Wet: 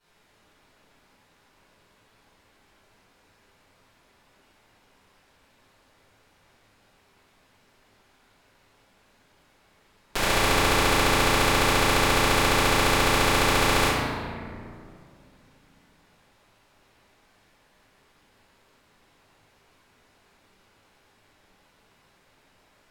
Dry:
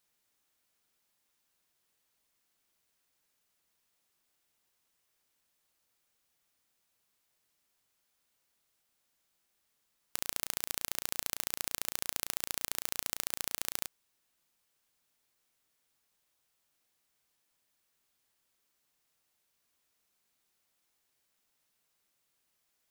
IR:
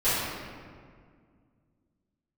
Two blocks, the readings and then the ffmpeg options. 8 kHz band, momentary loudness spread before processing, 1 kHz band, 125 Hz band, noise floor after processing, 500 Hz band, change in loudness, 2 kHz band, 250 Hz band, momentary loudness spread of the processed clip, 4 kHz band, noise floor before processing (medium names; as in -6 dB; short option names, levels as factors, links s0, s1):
+8.5 dB, 2 LU, +25.5 dB, +28.5 dB, -63 dBFS, +26.5 dB, +14.0 dB, +22.0 dB, +27.0 dB, 11 LU, +16.0 dB, -78 dBFS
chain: -filter_complex "[0:a]aemphasis=mode=reproduction:type=75fm[s0];[1:a]atrim=start_sample=2205,asetrate=37926,aresample=44100[s1];[s0][s1]afir=irnorm=-1:irlink=0,volume=2.66"